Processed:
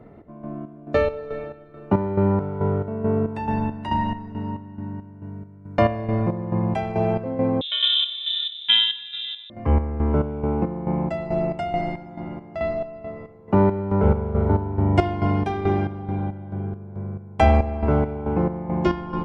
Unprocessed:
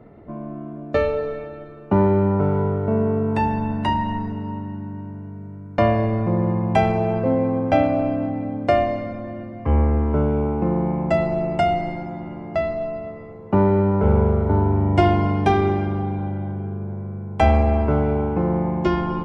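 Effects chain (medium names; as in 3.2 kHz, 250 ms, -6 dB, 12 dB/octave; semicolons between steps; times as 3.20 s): square tremolo 2.3 Hz, depth 65%, duty 50%; 7.61–9.50 s: frequency inversion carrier 3.8 kHz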